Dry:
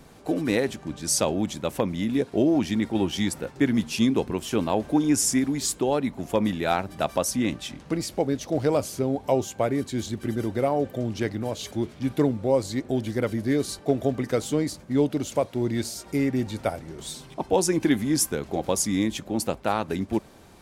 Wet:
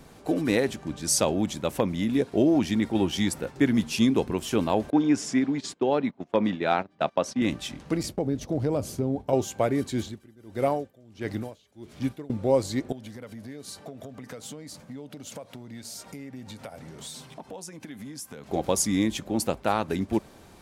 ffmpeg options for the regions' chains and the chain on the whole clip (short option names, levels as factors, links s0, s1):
-filter_complex "[0:a]asettb=1/sr,asplit=3[s0][s1][s2];[s0]atrim=end=4.904[s3];[s1]atrim=start=4.9:end=7.42,asetpts=PTS-STARTPTS,afade=t=in:d=0.004:c=qsin,afade=t=out:st=2.516:d=0.004:c=qsin,agate=range=0.1:threshold=0.0282:ratio=16:release=100:detection=peak,highpass=150,lowpass=3800[s4];[s2]atrim=start=7.416[s5];[s3][s4]acrossfade=d=0.004:c1=hsin:c2=qsin[s6];[s6][s5]acrossfade=d=0.004:c1=qsin:c2=hsin,asettb=1/sr,asplit=3[s7][s8][s9];[s7]atrim=end=8.034[s10];[s8]atrim=start=8.03:end=9.33,asetpts=PTS-STARTPTS,afade=t=in:d=0.004:c=qsin,afade=t=out:st=1.296:d=0.004:c=qsin,agate=range=0.0224:threshold=0.02:ratio=3:release=100:detection=peak,lowshelf=f=500:g=11.5,acompressor=threshold=0.0316:ratio=2:attack=3.2:release=140:knee=1:detection=peak[s11];[s9]atrim=start=9.326[s12];[s10][s11]acrossfade=d=0.004:c1=hsin:c2=qsin[s13];[s13][s12]acrossfade=d=0.004:c1=qsin:c2=hsin,asettb=1/sr,asplit=3[s14][s15][s16];[s14]atrim=end=10.014[s17];[s15]atrim=start=10.01:end=12.3,asetpts=PTS-STARTPTS,afade=t=in:d=0.004:c=qsin,afade=t=out:st=2.286:d=0.004:c=qsin,acrossover=split=3600[s18][s19];[s19]acompressor=threshold=0.00282:ratio=4:attack=1:release=60[s20];[s18][s20]amix=inputs=2:normalize=0,highshelf=f=4800:g=8,aeval=exprs='val(0)*pow(10,-27*(0.5-0.5*cos(2*PI*1.5*n/s))/20)':c=same[s21];[s16]atrim=start=12.296[s22];[s17][s21]acrossfade=d=0.004:c1=hsin:c2=qsin[s23];[s23][s22]acrossfade=d=0.004:c1=qsin:c2=hsin,asettb=1/sr,asplit=3[s24][s25][s26];[s24]atrim=end=12.924[s27];[s25]atrim=start=12.92:end=18.51,asetpts=PTS-STARTPTS,afade=t=in:d=0.004:c=qsin,afade=t=out:st=5.586:d=0.004:c=qsin,acompressor=threshold=0.0178:ratio=8:attack=3.2:release=140:knee=1:detection=peak,highpass=110,equalizer=f=350:t=o:w=0.28:g=-11[s28];[s26]atrim=start=18.506[s29];[s27][s28]acrossfade=d=0.004:c1=hsin:c2=qsin[s30];[s30][s29]acrossfade=d=0.004:c1=qsin:c2=hsin"